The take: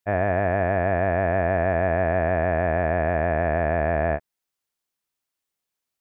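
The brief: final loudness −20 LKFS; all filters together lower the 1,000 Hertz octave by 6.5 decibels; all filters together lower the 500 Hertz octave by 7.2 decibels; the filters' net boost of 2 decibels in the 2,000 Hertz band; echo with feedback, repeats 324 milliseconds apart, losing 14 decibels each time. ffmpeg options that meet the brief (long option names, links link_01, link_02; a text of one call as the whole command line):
ffmpeg -i in.wav -af "equalizer=frequency=500:width_type=o:gain=-8,equalizer=frequency=1000:width_type=o:gain=-6,equalizer=frequency=2000:width_type=o:gain=5,aecho=1:1:324|648:0.2|0.0399,volume=6dB" out.wav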